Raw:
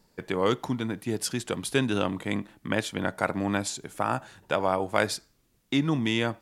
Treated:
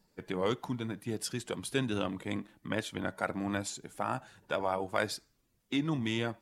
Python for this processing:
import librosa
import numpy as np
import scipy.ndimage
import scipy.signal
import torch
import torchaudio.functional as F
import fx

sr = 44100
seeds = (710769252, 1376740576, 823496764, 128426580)

y = fx.spec_quant(x, sr, step_db=15)
y = y * librosa.db_to_amplitude(-6.0)